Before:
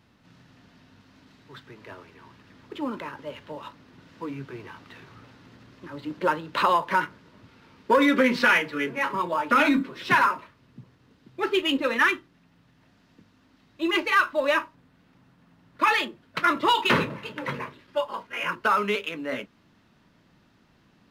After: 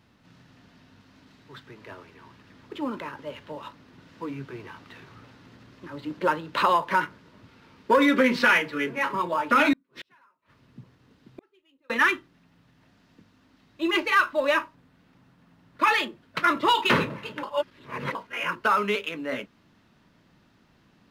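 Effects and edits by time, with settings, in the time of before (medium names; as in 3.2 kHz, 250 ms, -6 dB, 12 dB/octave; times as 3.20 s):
9.73–11.90 s: inverted gate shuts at -28 dBFS, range -40 dB
17.43–18.15 s: reverse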